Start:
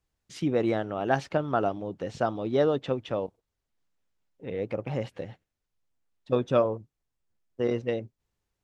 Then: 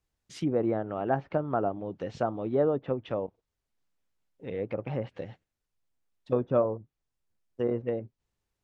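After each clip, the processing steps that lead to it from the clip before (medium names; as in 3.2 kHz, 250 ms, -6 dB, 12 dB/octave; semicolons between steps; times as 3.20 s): low-pass that closes with the level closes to 1.2 kHz, closed at -24.5 dBFS; trim -1.5 dB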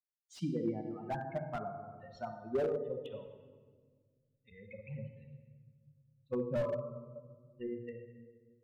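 expander on every frequency bin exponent 3; simulated room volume 1800 m³, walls mixed, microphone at 1.2 m; slew-rate limiter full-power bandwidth 24 Hz; trim -3 dB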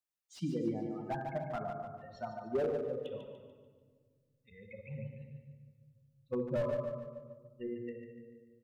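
feedback delay 146 ms, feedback 42%, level -7.5 dB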